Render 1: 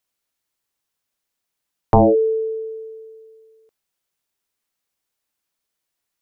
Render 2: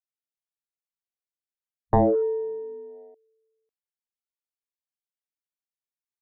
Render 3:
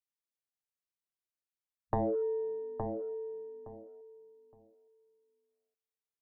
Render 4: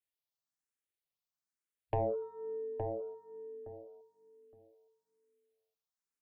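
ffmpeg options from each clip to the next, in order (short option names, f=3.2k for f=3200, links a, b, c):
-af "afwtdn=0.0398,volume=-6.5dB"
-filter_complex "[0:a]acompressor=threshold=-25dB:ratio=4,asplit=2[a][b];[b]adelay=866,lowpass=f=1.3k:p=1,volume=-5.5dB,asplit=2[c][d];[d]adelay=866,lowpass=f=1.3k:p=1,volume=0.21,asplit=2[e][f];[f]adelay=866,lowpass=f=1.3k:p=1,volume=0.21[g];[c][e][g]amix=inputs=3:normalize=0[h];[a][h]amix=inputs=2:normalize=0,volume=-5dB"
-filter_complex "[0:a]asoftclip=type=tanh:threshold=-21.5dB,asplit=2[a][b];[b]afreqshift=1.1[c];[a][c]amix=inputs=2:normalize=1,volume=1.5dB"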